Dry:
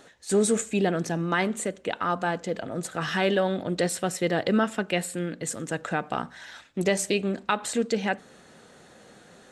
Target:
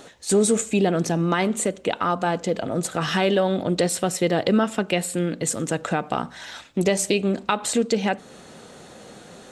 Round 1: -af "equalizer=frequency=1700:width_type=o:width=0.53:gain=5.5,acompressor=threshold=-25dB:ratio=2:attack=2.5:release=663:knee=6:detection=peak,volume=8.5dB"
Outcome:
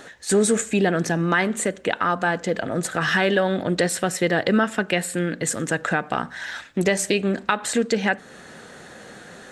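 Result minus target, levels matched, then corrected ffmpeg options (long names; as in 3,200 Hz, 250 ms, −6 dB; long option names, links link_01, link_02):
2,000 Hz band +6.0 dB
-af "equalizer=frequency=1700:width_type=o:width=0.53:gain=-5.5,acompressor=threshold=-25dB:ratio=2:attack=2.5:release=663:knee=6:detection=peak,volume=8.5dB"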